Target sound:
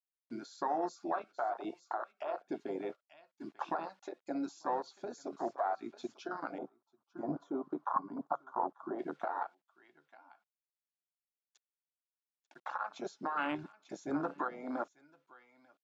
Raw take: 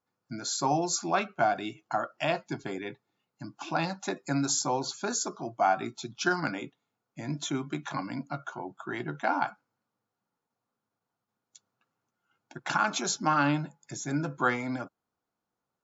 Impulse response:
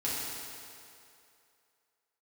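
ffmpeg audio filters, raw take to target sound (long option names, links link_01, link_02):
-filter_complex "[0:a]acrusher=bits=8:mix=0:aa=0.000001,highpass=410,acompressor=threshold=-31dB:ratio=3,aecho=1:1:892:0.168,alimiter=level_in=4.5dB:limit=-24dB:level=0:latency=1:release=477,volume=-4.5dB,lowpass=4500,afwtdn=0.0126,asettb=1/sr,asplit=3[link_01][link_02][link_03];[link_01]atrim=end=6.584[link_04];[link_02]atrim=start=6.58:end=8.99,asetpts=PTS-STARTPTS,afade=type=in:duration=0.004:curve=qsin,afade=type=out:start_time=2.406:duration=0.004:curve=qsin,highshelf=frequency=1600:width_type=q:width=3:gain=-12.5[link_05];[link_03]atrim=start=8.986[link_06];[link_04][link_05]acrossfade=duration=0.004:curve1=hsin:curve2=qsin[link_07];[link_07][link_06]acrossfade=duration=0.004:curve1=qsin:curve2=hsin,volume=6dB"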